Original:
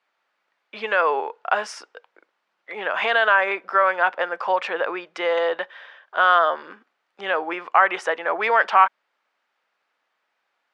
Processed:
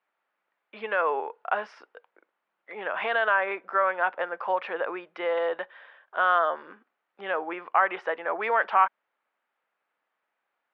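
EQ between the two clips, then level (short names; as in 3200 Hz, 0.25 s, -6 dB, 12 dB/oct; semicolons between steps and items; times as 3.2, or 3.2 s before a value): air absorption 340 m; -4.0 dB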